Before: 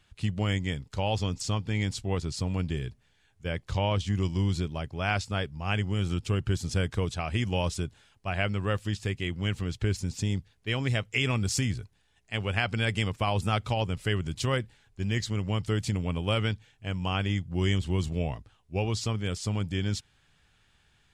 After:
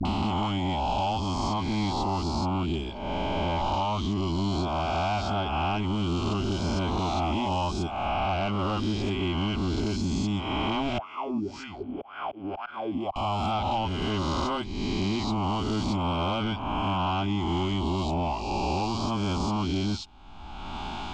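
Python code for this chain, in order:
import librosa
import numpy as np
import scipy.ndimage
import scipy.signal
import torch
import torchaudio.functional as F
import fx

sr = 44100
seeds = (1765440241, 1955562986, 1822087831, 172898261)

y = fx.spec_swells(x, sr, rise_s=1.71)
y = fx.peak_eq(y, sr, hz=860.0, db=5.5, octaves=0.39)
y = fx.dispersion(y, sr, late='highs', ms=53.0, hz=670.0)
y = fx.wah_lfo(y, sr, hz=1.9, low_hz=260.0, high_hz=1500.0, q=9.2, at=(10.98, 13.16))
y = fx.auto_swell(y, sr, attack_ms=777.0)
y = 10.0 ** (-20.5 / 20.0) * np.tanh(y / 10.0 ** (-20.5 / 20.0))
y = fx.air_absorb(y, sr, metres=180.0)
y = fx.fixed_phaser(y, sr, hz=480.0, stages=6)
y = fx.band_squash(y, sr, depth_pct=100)
y = y * 10.0 ** (6.0 / 20.0)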